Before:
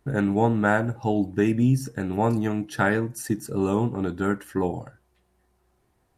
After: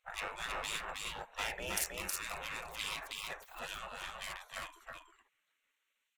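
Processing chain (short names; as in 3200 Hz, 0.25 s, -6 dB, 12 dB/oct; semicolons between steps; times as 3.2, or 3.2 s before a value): Wiener smoothing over 9 samples; spectral gate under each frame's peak -30 dB weak; 1.67–2.16 high shelf 6300 Hz +11.5 dB; on a send: echo 0.318 s -3 dB; on the sum: gain +6.5 dB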